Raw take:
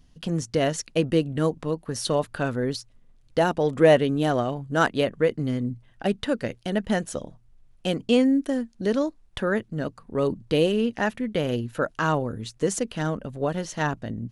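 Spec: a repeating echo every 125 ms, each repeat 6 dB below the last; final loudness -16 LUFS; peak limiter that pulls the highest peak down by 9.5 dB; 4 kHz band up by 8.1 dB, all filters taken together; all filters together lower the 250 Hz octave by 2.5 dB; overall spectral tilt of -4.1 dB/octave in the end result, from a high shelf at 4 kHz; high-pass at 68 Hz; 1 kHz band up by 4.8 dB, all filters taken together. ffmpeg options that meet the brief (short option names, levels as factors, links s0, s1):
-af "highpass=68,equalizer=f=250:t=o:g=-3.5,equalizer=f=1000:t=o:g=6,highshelf=f=4000:g=4,equalizer=f=4000:t=o:g=8.5,alimiter=limit=0.266:level=0:latency=1,aecho=1:1:125|250|375|500|625|750:0.501|0.251|0.125|0.0626|0.0313|0.0157,volume=2.66"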